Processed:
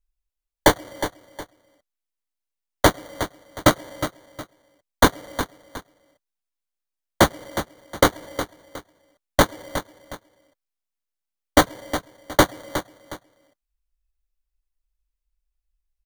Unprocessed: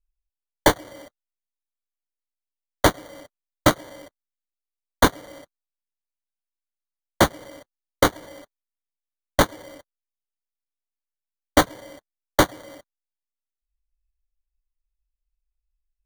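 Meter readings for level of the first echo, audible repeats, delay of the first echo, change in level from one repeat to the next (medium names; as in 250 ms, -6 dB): -11.0 dB, 2, 363 ms, -10.0 dB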